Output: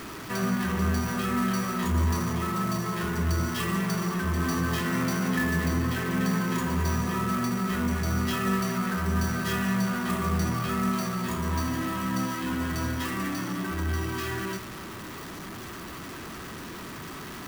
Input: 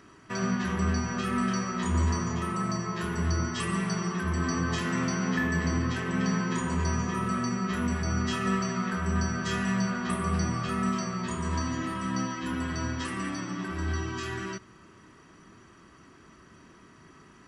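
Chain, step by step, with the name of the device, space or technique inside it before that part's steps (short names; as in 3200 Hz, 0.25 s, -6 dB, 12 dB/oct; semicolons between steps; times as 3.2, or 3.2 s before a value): early CD player with a faulty converter (zero-crossing step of -34.5 dBFS; clock jitter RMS 0.025 ms)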